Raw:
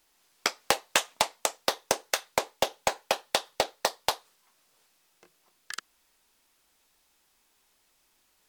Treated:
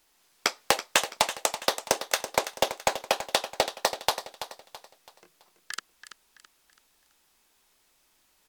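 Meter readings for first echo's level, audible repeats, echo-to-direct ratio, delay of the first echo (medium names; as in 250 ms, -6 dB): -11.5 dB, 3, -11.0 dB, 331 ms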